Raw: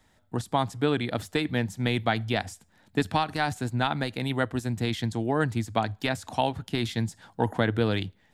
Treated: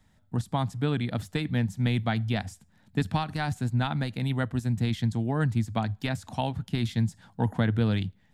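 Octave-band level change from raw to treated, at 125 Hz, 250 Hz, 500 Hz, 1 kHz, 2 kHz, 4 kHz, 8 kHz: +3.5 dB, 0.0 dB, -6.0 dB, -5.0 dB, -4.5 dB, -4.5 dB, -4.5 dB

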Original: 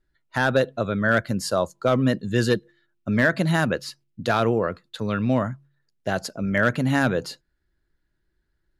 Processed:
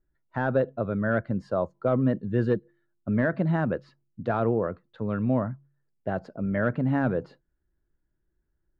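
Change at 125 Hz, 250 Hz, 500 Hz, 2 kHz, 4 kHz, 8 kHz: -2.5 dB, -2.5 dB, -3.5 dB, -10.0 dB, under -20 dB, under -30 dB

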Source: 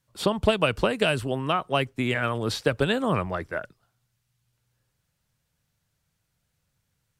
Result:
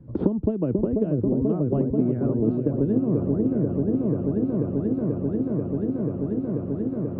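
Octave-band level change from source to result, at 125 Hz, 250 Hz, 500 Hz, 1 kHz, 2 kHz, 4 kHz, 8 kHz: +7.0 dB, +10.0 dB, +1.5 dB, -13.0 dB, under -25 dB, under -35 dB, under -35 dB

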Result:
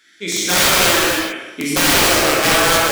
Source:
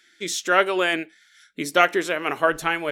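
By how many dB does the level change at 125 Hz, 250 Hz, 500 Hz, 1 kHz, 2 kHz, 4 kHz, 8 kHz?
+14.0 dB, +8.0 dB, +4.0 dB, +5.0 dB, +7.0 dB, +14.5 dB, +17.5 dB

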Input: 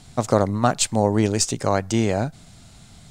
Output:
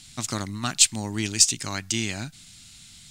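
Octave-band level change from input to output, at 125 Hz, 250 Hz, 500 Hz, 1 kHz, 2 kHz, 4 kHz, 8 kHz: -9.0 dB, -9.0 dB, -18.0 dB, -12.5 dB, 0.0 dB, +5.0 dB, +5.0 dB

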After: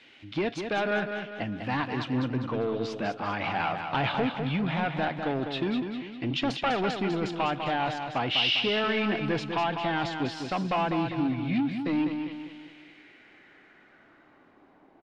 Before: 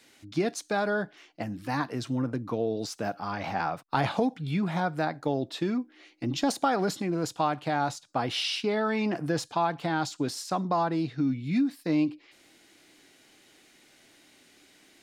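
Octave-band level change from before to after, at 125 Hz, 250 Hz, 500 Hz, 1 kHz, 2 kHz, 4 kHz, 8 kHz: 0.0 dB, 0.0 dB, 0.0 dB, 0.0 dB, +4.0 dB, +5.0 dB, -12.0 dB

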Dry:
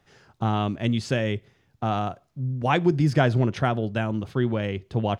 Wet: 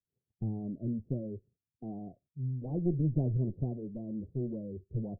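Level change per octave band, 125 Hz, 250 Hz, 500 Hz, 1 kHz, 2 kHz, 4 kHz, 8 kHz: -8.5 dB, -9.5 dB, -14.5 dB, -28.0 dB, under -40 dB, under -40 dB, no reading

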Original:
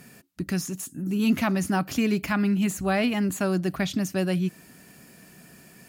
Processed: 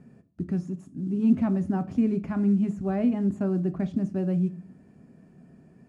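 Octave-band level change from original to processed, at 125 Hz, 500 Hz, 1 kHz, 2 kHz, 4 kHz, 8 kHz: +0.5 dB, -3.0 dB, -8.0 dB, -16.5 dB, under -20 dB, under -25 dB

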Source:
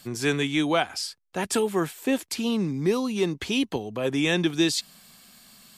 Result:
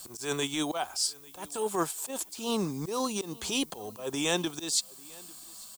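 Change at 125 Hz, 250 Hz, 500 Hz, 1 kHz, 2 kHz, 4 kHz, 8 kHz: -9.5 dB, -9.0 dB, -7.5 dB, -3.0 dB, -9.0 dB, -3.5 dB, +2.5 dB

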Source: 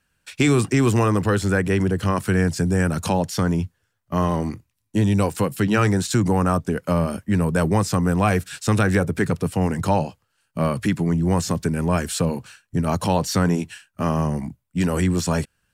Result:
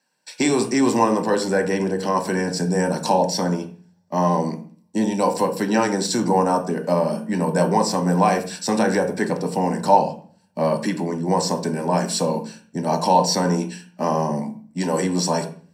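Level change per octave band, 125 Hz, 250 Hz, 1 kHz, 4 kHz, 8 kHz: -6.5 dB, -1.0 dB, +5.5 dB, +4.0 dB, +2.5 dB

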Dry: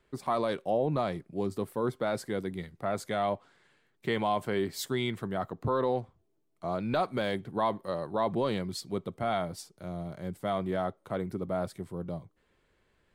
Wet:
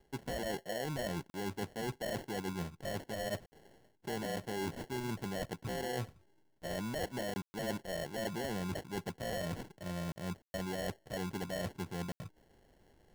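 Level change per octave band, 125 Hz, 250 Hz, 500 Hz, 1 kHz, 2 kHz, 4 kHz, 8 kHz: -4.5 dB, -6.0 dB, -8.5 dB, -10.5 dB, -3.0 dB, -3.0 dB, 0.0 dB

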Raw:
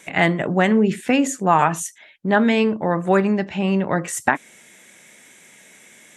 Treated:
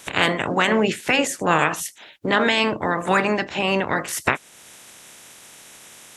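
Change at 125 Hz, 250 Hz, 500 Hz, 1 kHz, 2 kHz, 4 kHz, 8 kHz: -6.0 dB, -6.0 dB, -2.0 dB, -1.5 dB, +2.5 dB, +7.5 dB, -0.5 dB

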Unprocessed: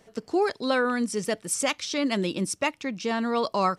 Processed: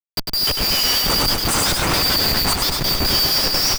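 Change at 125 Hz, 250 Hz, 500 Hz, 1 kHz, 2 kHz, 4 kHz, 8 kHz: +12.5 dB, -0.5 dB, -1.0 dB, +4.0 dB, +6.5 dB, +19.5 dB, +11.0 dB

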